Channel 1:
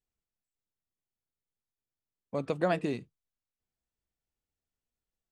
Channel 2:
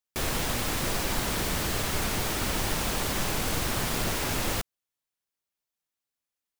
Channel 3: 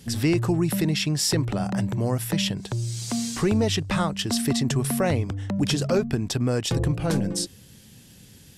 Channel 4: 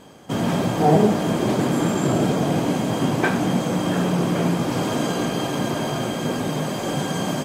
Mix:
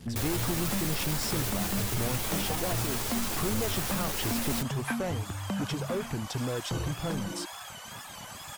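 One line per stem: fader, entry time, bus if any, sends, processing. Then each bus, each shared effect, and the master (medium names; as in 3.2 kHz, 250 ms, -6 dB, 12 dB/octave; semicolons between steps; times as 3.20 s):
-3.0 dB, 0.00 s, bus A, no send, none
+0.5 dB, 0.00 s, bus B, no send, three-phase chorus
-2.5 dB, 0.00 s, bus A, no send, treble shelf 2.7 kHz -11.5 dB; reverb removal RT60 0.77 s
-10.5 dB, 1.65 s, bus B, no send, high-pass 850 Hz 24 dB/octave; reverb removal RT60 0.53 s; wow and flutter 120 cents
bus A: 0.0 dB, waveshaping leveller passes 2; compression 2:1, threshold -38 dBFS, peak gain reduction 10 dB
bus B: 0.0 dB, treble shelf 7.5 kHz +8 dB; peak limiter -22.5 dBFS, peak gain reduction 6.5 dB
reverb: none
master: none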